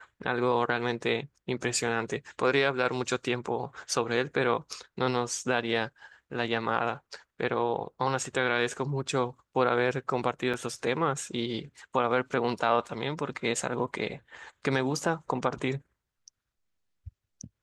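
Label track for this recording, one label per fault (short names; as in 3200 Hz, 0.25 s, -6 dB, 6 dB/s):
10.530000	10.540000	gap 6.1 ms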